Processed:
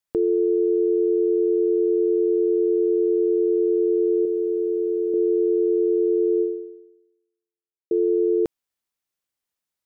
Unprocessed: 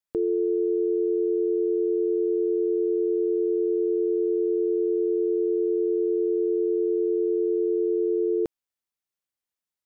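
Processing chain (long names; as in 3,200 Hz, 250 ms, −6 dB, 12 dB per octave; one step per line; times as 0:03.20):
0:04.25–0:05.14: spectral tilt +2.5 dB per octave
0:06.41–0:07.91: fade out exponential
level +4 dB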